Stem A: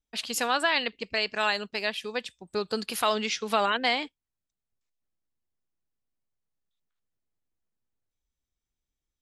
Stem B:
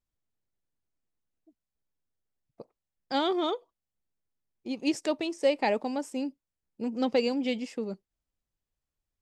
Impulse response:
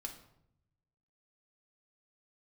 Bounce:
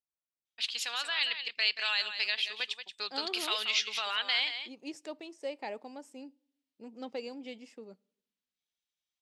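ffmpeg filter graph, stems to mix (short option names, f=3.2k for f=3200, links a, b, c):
-filter_complex "[0:a]alimiter=limit=-17dB:level=0:latency=1:release=55,dynaudnorm=f=610:g=3:m=3dB,bandpass=f=3.4k:t=q:w=1.4:csg=0,adelay=450,volume=1.5dB,asplit=2[a][b];[b]volume=-9.5dB[c];[1:a]volume=-12.5dB,asplit=2[d][e];[e]volume=-18dB[f];[2:a]atrim=start_sample=2205[g];[f][g]afir=irnorm=-1:irlink=0[h];[c]aecho=0:1:180:1[i];[a][d][h][i]amix=inputs=4:normalize=0,highpass=f=300:p=1"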